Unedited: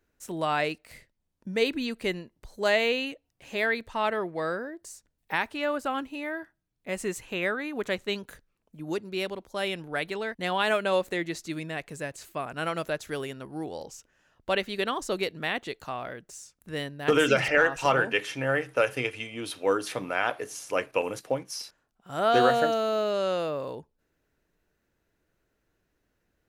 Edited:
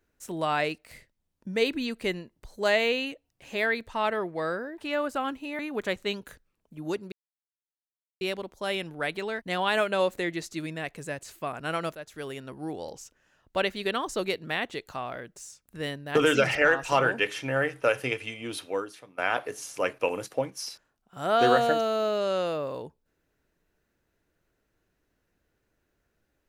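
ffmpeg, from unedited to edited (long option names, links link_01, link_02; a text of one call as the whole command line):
ffmpeg -i in.wav -filter_complex "[0:a]asplit=6[link_01][link_02][link_03][link_04][link_05][link_06];[link_01]atrim=end=4.782[link_07];[link_02]atrim=start=5.478:end=6.292[link_08];[link_03]atrim=start=7.608:end=9.14,asetpts=PTS-STARTPTS,afade=type=out:start_time=1.528:duration=0.004:curve=hsin,apad=pad_dur=1.09[link_09];[link_04]atrim=start=9.14:end=12.88,asetpts=PTS-STARTPTS,afade=type=in:duration=0.004:curve=hsin,afade=type=out:start_time=3.736:duration=0.004:curve=hsin:silence=0.223872[link_10];[link_05]atrim=start=12.88:end=20.11,asetpts=PTS-STARTPTS,afade=type=in:duration=0.56:silence=0.223872,afade=type=out:start_time=6.63:duration=0.6:curve=qua:silence=0.0841395[link_11];[link_06]atrim=start=20.11,asetpts=PTS-STARTPTS,afade=type=in:duration=0.004:curve=hsin:silence=0.0841395[link_12];[link_07][link_08]acrossfade=duration=0.004:curve1=hsin:curve2=hsin[link_13];[link_09][link_10][link_11][link_12]concat=n=4:v=0:a=1[link_14];[link_13][link_14]acrossfade=duration=0.004:curve1=hsin:curve2=hsin" out.wav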